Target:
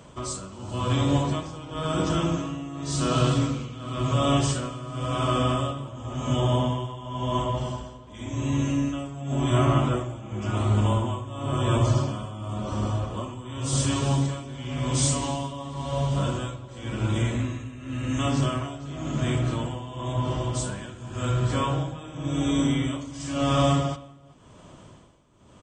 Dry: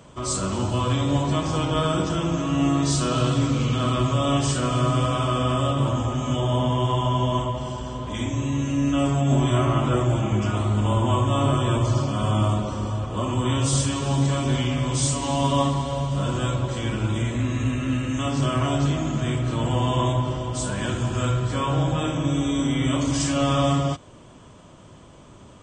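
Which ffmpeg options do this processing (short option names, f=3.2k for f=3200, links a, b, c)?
-filter_complex "[0:a]asplit=2[a][b];[b]adelay=384.8,volume=-14dB,highshelf=f=4k:g=-8.66[c];[a][c]amix=inputs=2:normalize=0,tremolo=f=0.93:d=0.84"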